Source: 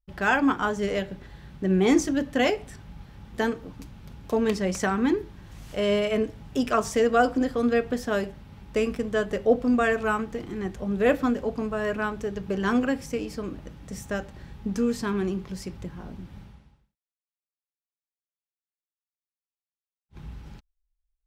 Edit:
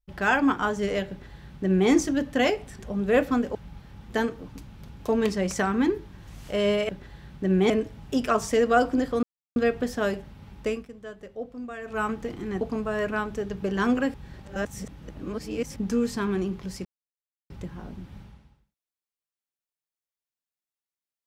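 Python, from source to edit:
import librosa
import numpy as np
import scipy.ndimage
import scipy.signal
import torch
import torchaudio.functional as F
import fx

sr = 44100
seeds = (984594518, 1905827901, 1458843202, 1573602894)

y = fx.edit(x, sr, fx.duplicate(start_s=1.09, length_s=0.81, to_s=6.13),
    fx.insert_silence(at_s=7.66, length_s=0.33),
    fx.fade_down_up(start_s=8.69, length_s=1.5, db=-15.0, fade_s=0.27),
    fx.move(start_s=10.71, length_s=0.76, to_s=2.79),
    fx.reverse_span(start_s=13.0, length_s=1.62),
    fx.insert_silence(at_s=15.71, length_s=0.65), tone=tone)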